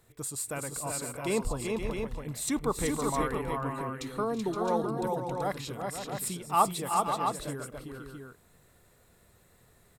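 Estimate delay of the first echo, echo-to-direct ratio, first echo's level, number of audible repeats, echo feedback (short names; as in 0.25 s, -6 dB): 0.327 s, -1.0 dB, -17.0 dB, 4, no steady repeat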